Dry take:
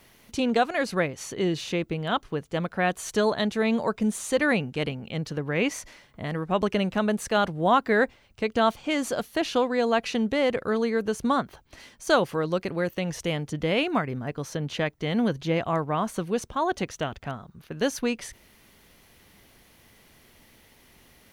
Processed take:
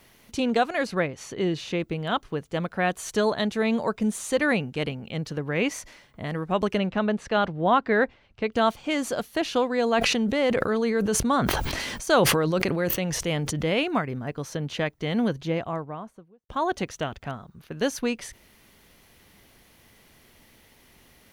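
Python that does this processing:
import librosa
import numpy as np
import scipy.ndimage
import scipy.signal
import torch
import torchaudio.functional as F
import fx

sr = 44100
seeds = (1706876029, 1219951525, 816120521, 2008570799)

y = fx.high_shelf(x, sr, hz=7200.0, db=-9.0, at=(0.87, 1.8))
y = fx.lowpass(y, sr, hz=3900.0, slope=12, at=(6.78, 8.53))
y = fx.sustainer(y, sr, db_per_s=22.0, at=(9.8, 13.74))
y = fx.studio_fade_out(y, sr, start_s=15.2, length_s=1.29)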